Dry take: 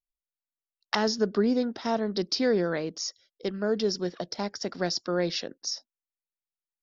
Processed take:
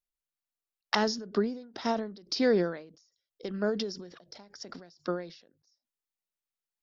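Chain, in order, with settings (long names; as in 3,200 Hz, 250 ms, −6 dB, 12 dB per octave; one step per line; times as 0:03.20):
mains-hum notches 50/100/150 Hz
every ending faded ahead of time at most 100 dB per second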